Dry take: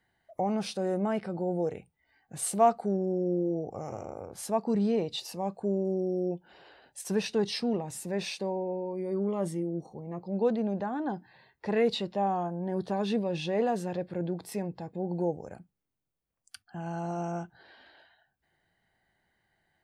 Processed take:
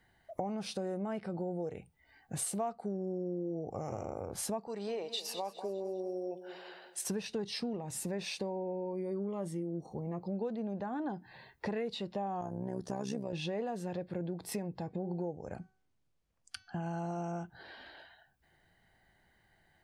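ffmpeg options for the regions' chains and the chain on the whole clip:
ffmpeg -i in.wav -filter_complex "[0:a]asettb=1/sr,asplit=3[link_01][link_02][link_03];[link_01]atrim=end=4.674[link_04];[link_02]atrim=start=4.67:end=7.06,asetpts=PTS-STARTPTS,afade=type=in:duration=0.004:curve=qsin,afade=type=out:start_time=2.386:duration=0.004:curve=qsin,highpass=560,aecho=1:1:201|402|603|804:0.188|0.081|0.0348|0.015,atrim=end_sample=105399[link_05];[link_03]atrim=start=7.056[link_06];[link_04][link_05]acrossfade=duration=0.004:curve1=hsin:curve2=qsin[link_07];[link_07][link_06]acrossfade=duration=0.004:curve1=qsin:curve2=hsin,asettb=1/sr,asplit=3[link_08][link_09][link_10];[link_08]atrim=end=12.414[link_11];[link_09]atrim=start=12.41:end=13.33,asetpts=PTS-STARTPTS,afade=type=in:duration=0.004:curve=qsin,afade=type=out:start_time=0.916:duration=0.004:curve=qsin,highshelf=frequency=4800:width_type=q:width=3:gain=7,acompressor=mode=upward:threshold=-35dB:ratio=2.5:attack=3.2:release=140:knee=2.83:detection=peak,tremolo=f=65:d=0.788[link_12];[link_10]atrim=start=13.326[link_13];[link_11][link_12]acrossfade=duration=0.004:curve1=hsin:curve2=qsin[link_14];[link_14][link_13]acrossfade=duration=0.004:curve1=qsin:curve2=hsin,asettb=1/sr,asplit=3[link_15][link_16][link_17];[link_15]atrim=end=14.834[link_18];[link_16]atrim=start=14.83:end=16.83,asetpts=PTS-STARTPTS,afade=type=in:duration=0.004:curve=qsin,afade=type=out:start_time=1.996:duration=0.004:curve=qsin,lowpass=7100,bandreject=frequency=377.7:width_type=h:width=4,bandreject=frequency=755.4:width_type=h:width=4,bandreject=frequency=1133.1:width_type=h:width=4,bandreject=frequency=1510.8:width_type=h:width=4,bandreject=frequency=1888.5:width_type=h:width=4,bandreject=frequency=2266.2:width_type=h:width=4,bandreject=frequency=2643.9:width_type=h:width=4,bandreject=frequency=3021.6:width_type=h:width=4,bandreject=frequency=3399.3:width_type=h:width=4,bandreject=frequency=3777:width_type=h:width=4,bandreject=frequency=4154.7:width_type=h:width=4,bandreject=frequency=4532.4:width_type=h:width=4,bandreject=frequency=4910.1:width_type=h:width=4,bandreject=frequency=5287.8:width_type=h:width=4,bandreject=frequency=5665.5:width_type=h:width=4,bandreject=frequency=6043.2:width_type=h:width=4,bandreject=frequency=6420.9:width_type=h:width=4[link_19];[link_17]atrim=start=16.826[link_20];[link_18][link_19]acrossfade=duration=0.004:curve1=hsin:curve2=qsin[link_21];[link_21][link_20]acrossfade=duration=0.004:curve1=qsin:curve2=hsin,lowshelf=frequency=72:gain=8,acompressor=threshold=-39dB:ratio=6,volume=4.5dB" out.wav

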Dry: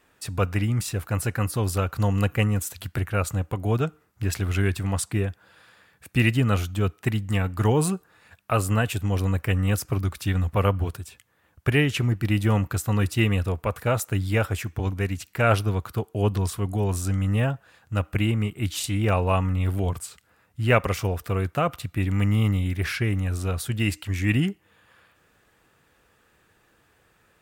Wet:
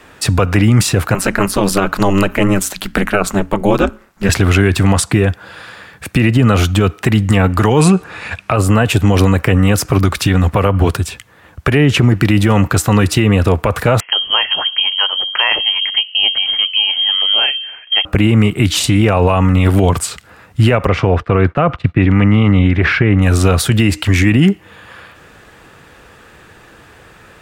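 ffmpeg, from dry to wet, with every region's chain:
ffmpeg -i in.wav -filter_complex "[0:a]asettb=1/sr,asplit=3[link_01][link_02][link_03];[link_01]atrim=end=1.144[link_04];[link_02]atrim=start=1.14:end=4.29,asetpts=PTS-STARTPTS,afade=type=in:duration=0.004:curve=qsin,afade=type=out:start_time=3.146:duration=0.004:curve=qsin,equalizer=frequency=110:width=0.8:gain=-9,bandreject=frequency=60:width_type=h:width=6,bandreject=frequency=120:width_type=h:width=6,bandreject=frequency=180:width_type=h:width=6,aeval=exprs='val(0)*sin(2*PI*99*n/s)':channel_layout=same[link_05];[link_03]atrim=start=4.286[link_06];[link_04][link_05]acrossfade=duration=0.004:curve1=hsin:curve2=qsin[link_07];[link_07][link_06]acrossfade=duration=0.004:curve1=qsin:curve2=hsin,asettb=1/sr,asplit=3[link_08][link_09][link_10];[link_08]atrim=end=7.804[link_11];[link_09]atrim=start=7.8:end=8.56,asetpts=PTS-STARTPTS,afade=type=in:duration=0.004:curve=qsin,afade=type=out:start_time=0.756:duration=0.004:curve=qsin,lowpass=9600,equalizer=frequency=2400:width=5.3:gain=8,acontrast=47[link_12];[link_10]atrim=start=8.556[link_13];[link_11][link_12]acrossfade=duration=0.004:curve1=hsin:curve2=qsin[link_14];[link_14][link_13]acrossfade=duration=0.004:curve1=qsin:curve2=hsin,asettb=1/sr,asplit=3[link_15][link_16][link_17];[link_15]atrim=end=14.004[link_18];[link_16]atrim=start=14:end=18.05,asetpts=PTS-STARTPTS,afade=type=in:duration=0.004:curve=qsin,afade=type=out:start_time=4.046:duration=0.004:curve=qsin,highshelf=frequency=2200:gain=-10,bandreject=frequency=47.24:width_type=h:width=4,bandreject=frequency=94.48:width_type=h:width=4,bandreject=frequency=141.72:width_type=h:width=4,bandreject=frequency=188.96:width_type=h:width=4,bandreject=frequency=236.2:width_type=h:width=4,bandreject=frequency=283.44:width_type=h:width=4,bandreject=frequency=330.68:width_type=h:width=4,bandreject=frequency=377.92:width_type=h:width=4,bandreject=frequency=425.16:width_type=h:width=4,bandreject=frequency=472.4:width_type=h:width=4,bandreject=frequency=519.64:width_type=h:width=4,bandreject=frequency=566.88:width_type=h:width=4,bandreject=frequency=614.12:width_type=h:width=4,bandreject=frequency=661.36:width_type=h:width=4,lowpass=frequency=2800:width_type=q:width=0.5098,lowpass=frequency=2800:width_type=q:width=0.6013,lowpass=frequency=2800:width_type=q:width=0.9,lowpass=frequency=2800:width_type=q:width=2.563,afreqshift=-3300[link_19];[link_17]atrim=start=18.046[link_20];[link_18][link_19]acrossfade=duration=0.004:curve1=hsin:curve2=qsin[link_21];[link_21][link_20]acrossfade=duration=0.004:curve1=qsin:curve2=hsin,asettb=1/sr,asplit=3[link_22][link_23][link_24];[link_22]atrim=end=20.874[link_25];[link_23]atrim=start=20.87:end=23.22,asetpts=PTS-STARTPTS,afade=type=in:duration=0.004:curve=qsin,afade=type=out:start_time=2.346:duration=0.004:curve=qsin,lowpass=2600,agate=range=-33dB:threshold=-37dB:ratio=3:release=100:detection=peak[link_26];[link_24]atrim=start=23.216[link_27];[link_25][link_26]acrossfade=duration=0.004:curve1=hsin:curve2=qsin[link_28];[link_28][link_27]acrossfade=duration=0.004:curve1=qsin:curve2=hsin,highshelf=frequency=10000:gain=-12,acrossover=split=160|1200[link_29][link_30][link_31];[link_29]acompressor=threshold=-33dB:ratio=4[link_32];[link_30]acompressor=threshold=-25dB:ratio=4[link_33];[link_31]acompressor=threshold=-35dB:ratio=4[link_34];[link_32][link_33][link_34]amix=inputs=3:normalize=0,alimiter=level_in=22dB:limit=-1dB:release=50:level=0:latency=1,volume=-1dB" out.wav

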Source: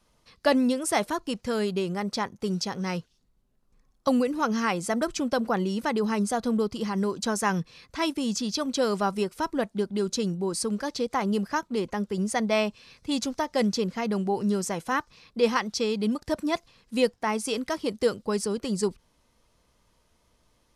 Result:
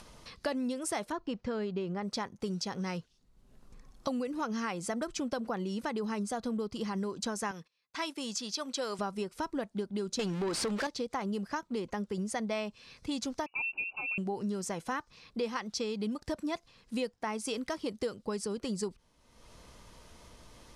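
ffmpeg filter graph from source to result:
ffmpeg -i in.wav -filter_complex "[0:a]asettb=1/sr,asplit=3[link_01][link_02][link_03];[link_01]atrim=end=1.124[link_04];[link_02]atrim=start=1.12:end=2.03,asetpts=PTS-STARTPTS,afade=type=in:duration=0.004:curve=qsin,afade=type=out:start_time=0.906:duration=0.004:curve=qsin,lowpass=7100,aemphasis=mode=reproduction:type=75fm[link_05];[link_03]atrim=start=2.026[link_06];[link_04][link_05]acrossfade=duration=0.004:curve1=hsin:curve2=qsin[link_07];[link_07][link_06]acrossfade=duration=0.004:curve1=qsin:curve2=hsin,asettb=1/sr,asplit=3[link_08][link_09][link_10];[link_08]atrim=end=7.514[link_11];[link_09]atrim=start=7.51:end=8.99,asetpts=PTS-STARTPTS,afade=type=in:duration=0.004:curve=qsin,afade=type=out:start_time=1.476:duration=0.004:curve=qsin,agate=range=-28dB:threshold=-45dB:ratio=16:release=100:detection=peak,highpass=frequency=680:poles=1[link_12];[link_10]atrim=start=8.986[link_13];[link_11][link_12]acrossfade=duration=0.004:curve1=hsin:curve2=qsin[link_14];[link_14][link_13]acrossfade=duration=0.004:curve1=qsin:curve2=hsin,asettb=1/sr,asplit=3[link_15][link_16][link_17];[link_15]atrim=end=10.194[link_18];[link_16]atrim=start=10.19:end=10.87,asetpts=PTS-STARTPTS,afade=type=in:duration=0.004:curve=qsin,afade=type=out:start_time=0.676:duration=0.004:curve=qsin,aeval=exprs='val(0)+0.5*0.015*sgn(val(0))':channel_layout=same,equalizer=frequency=3200:width_type=o:width=1.6:gain=3.5,asplit=2[link_19][link_20];[link_20]highpass=frequency=720:poles=1,volume=23dB,asoftclip=type=tanh:threshold=-14.5dB[link_21];[link_19][link_21]amix=inputs=2:normalize=0,lowpass=frequency=3600:poles=1,volume=-6dB[link_22];[link_17]atrim=start=10.866[link_23];[link_18][link_22]acrossfade=duration=0.004:curve1=hsin:curve2=qsin[link_24];[link_24][link_23]acrossfade=duration=0.004:curve1=qsin:curve2=hsin,asettb=1/sr,asplit=3[link_25][link_26][link_27];[link_25]atrim=end=13.464[link_28];[link_26]atrim=start=13.46:end=14.18,asetpts=PTS-STARTPTS,afade=type=in:duration=0.004:curve=qsin,afade=type=out:start_time=0.716:duration=0.004:curve=qsin,asuperstop=centerf=1000:order=4:qfactor=0.64,equalizer=frequency=98:width=0.54:gain=-8,lowpass=frequency=2500:width_type=q:width=0.5098,lowpass=frequency=2500:width_type=q:width=0.6013,lowpass=frequency=2500:width_type=q:width=0.9,lowpass=frequency=2500:width_type=q:width=2.563,afreqshift=-2900[link_29];[link_27]atrim=start=14.176[link_30];[link_28][link_29]acrossfade=duration=0.004:curve1=hsin:curve2=qsin[link_31];[link_31][link_30]acrossfade=duration=0.004:curve1=qsin:curve2=hsin,acompressor=mode=upward:threshold=-38dB:ratio=2.5,lowpass=11000,acompressor=threshold=-30dB:ratio=4,volume=-2dB" out.wav

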